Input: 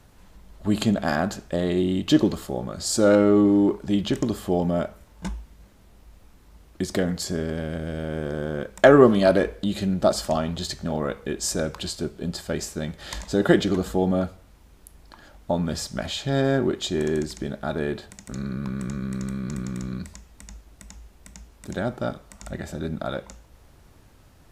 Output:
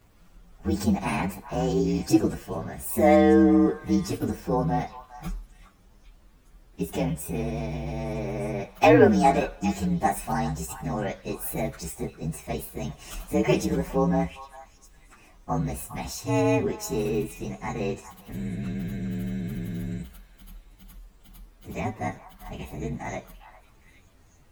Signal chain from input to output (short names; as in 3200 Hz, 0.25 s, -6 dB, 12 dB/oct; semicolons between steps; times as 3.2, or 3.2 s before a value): inharmonic rescaling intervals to 122%; delay with a stepping band-pass 0.406 s, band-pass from 1200 Hz, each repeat 1.4 oct, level -9.5 dB